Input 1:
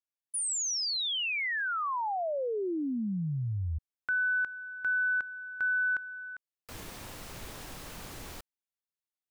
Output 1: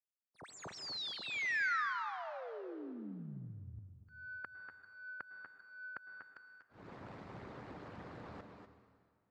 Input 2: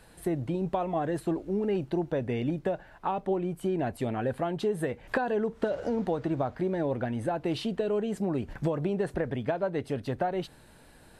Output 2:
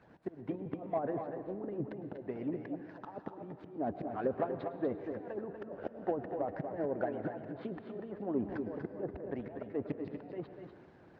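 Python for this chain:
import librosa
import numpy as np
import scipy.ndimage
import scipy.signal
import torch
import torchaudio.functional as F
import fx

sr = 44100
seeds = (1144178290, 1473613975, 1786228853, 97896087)

p1 = scipy.signal.medfilt(x, 15)
p2 = fx.env_lowpass_down(p1, sr, base_hz=650.0, full_db=-24.5)
p3 = fx.auto_swell(p2, sr, attack_ms=245.0)
p4 = fx.hpss(p3, sr, part='harmonic', gain_db=-17)
p5 = 10.0 ** (-28.5 / 20.0) * np.tanh(p4 / 10.0 ** (-28.5 / 20.0))
p6 = p4 + F.gain(torch.from_numpy(p5), -3.5).numpy()
p7 = fx.bandpass_edges(p6, sr, low_hz=100.0, high_hz=3700.0)
p8 = p7 + fx.echo_multitap(p7, sr, ms=(241, 251), db=(-7.5, -12.5), dry=0)
p9 = fx.rev_plate(p8, sr, seeds[0], rt60_s=2.0, hf_ratio=0.9, predelay_ms=95, drr_db=10.5)
y = F.gain(torch.from_numpy(p9), -2.5).numpy()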